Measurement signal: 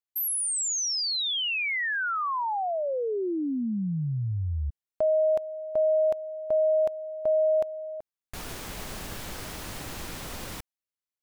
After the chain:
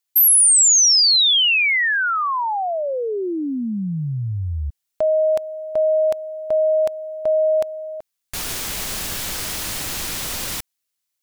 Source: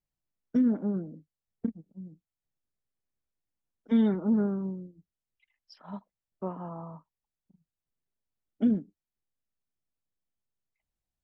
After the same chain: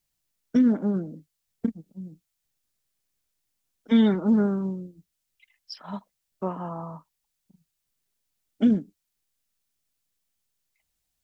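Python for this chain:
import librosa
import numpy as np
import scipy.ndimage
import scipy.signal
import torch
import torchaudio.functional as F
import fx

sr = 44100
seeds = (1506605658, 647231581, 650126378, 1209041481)

y = fx.high_shelf(x, sr, hz=2000.0, db=11.5)
y = F.gain(torch.from_numpy(y), 4.5).numpy()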